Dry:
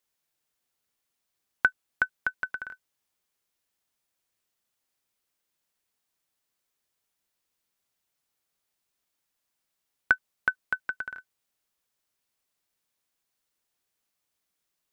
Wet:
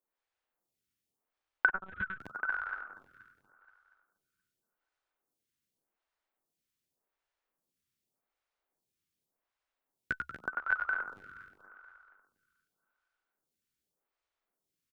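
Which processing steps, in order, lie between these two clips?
feedback delay that plays each chunk backwards 119 ms, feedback 71%, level −6 dB
high-shelf EQ 2,200 Hz −9.5 dB
echo with shifted repeats 93 ms, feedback 51%, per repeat −73 Hz, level −7 dB
0:01.68–0:02.20: one-pitch LPC vocoder at 8 kHz 190 Hz
phaser with staggered stages 0.86 Hz

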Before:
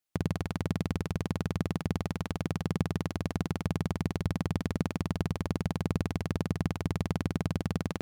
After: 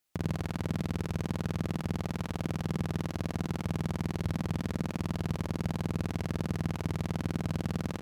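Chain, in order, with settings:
brickwall limiter −25 dBFS, peak gain reduction 11 dB
ambience of single reflections 36 ms −8.5 dB, 80 ms −12 dB
level +6 dB

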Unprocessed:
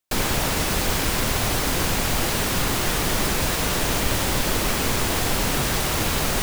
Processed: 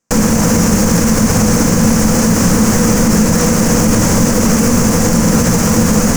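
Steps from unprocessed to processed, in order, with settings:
hum removal 60.56 Hz, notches 3
wrong playback speed 24 fps film run at 25 fps
drawn EQ curve 230 Hz 0 dB, 600 Hz −5 dB, 1,100 Hz −1 dB, 1,700 Hz −2 dB, 7,200 Hz −15 dB, 11,000 Hz −29 dB
in parallel at −8.5 dB: wrap-around overflow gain 26 dB
on the sum: high shelf with overshoot 4,800 Hz +9.5 dB, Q 3
hollow resonant body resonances 210/490 Hz, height 14 dB, ringing for 60 ms
on a send at −16 dB: convolution reverb, pre-delay 3 ms
on the sum: boost into a limiter +12 dB
level −1 dB

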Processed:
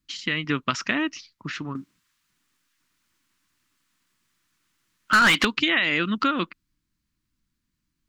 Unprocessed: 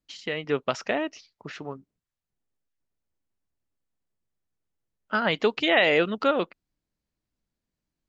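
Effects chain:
flat-topped bell 580 Hz −15 dB 1.3 octaves
downward compressor 6 to 1, threshold −26 dBFS, peak gain reduction 8 dB
0:01.75–0:05.45: mid-hump overdrive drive 22 dB, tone 6,500 Hz, clips at −17.5 dBFS
level +7.5 dB

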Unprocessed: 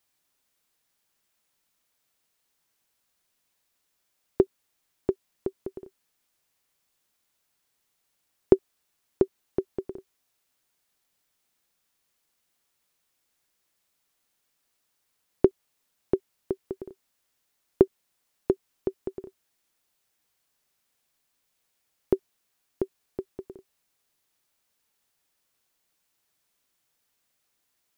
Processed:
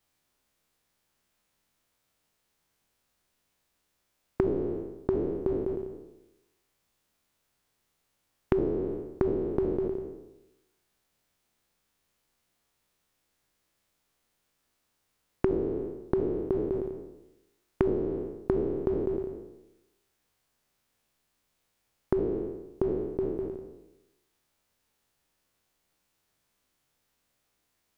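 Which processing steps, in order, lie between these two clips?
peak hold with a decay on every bin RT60 0.97 s
spectral tilt −1.5 dB per octave
downward compressor 6 to 1, threshold −24 dBFS, peak gain reduction 15.5 dB

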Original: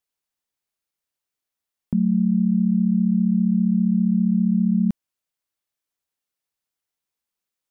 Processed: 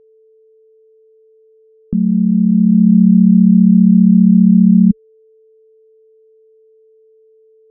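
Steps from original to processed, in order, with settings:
low-pass filter sweep 450 Hz → 210 Hz, 0:01.97–0:03.05
spectral tilt −2.5 dB per octave
steady tone 440 Hz −45 dBFS
level −2 dB

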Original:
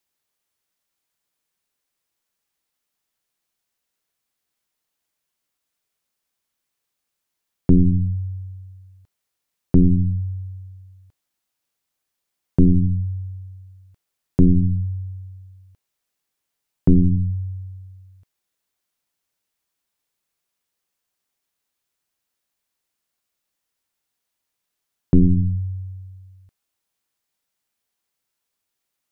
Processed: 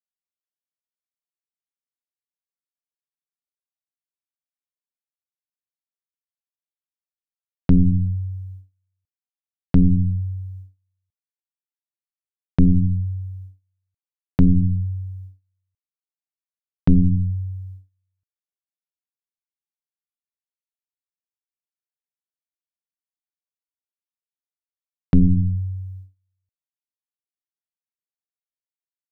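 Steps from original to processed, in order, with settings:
parametric band 370 Hz −11 dB 0.37 octaves
noise gate −37 dBFS, range −30 dB

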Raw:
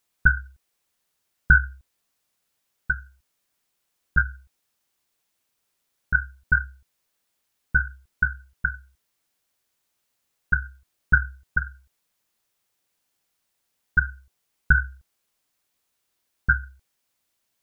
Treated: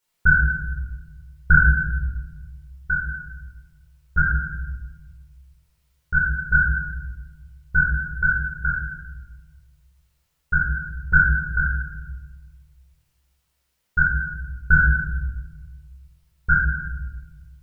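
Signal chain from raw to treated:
parametric band 250 Hz −7.5 dB 0.22 octaves
rectangular room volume 700 cubic metres, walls mixed, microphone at 4.5 metres
level −6 dB

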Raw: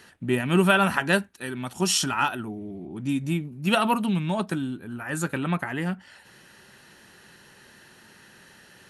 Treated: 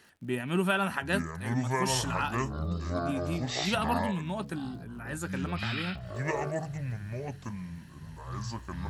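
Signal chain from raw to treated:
surface crackle 77 per second −43 dBFS
delay with pitch and tempo change per echo 692 ms, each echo −7 semitones, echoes 2
level −8 dB

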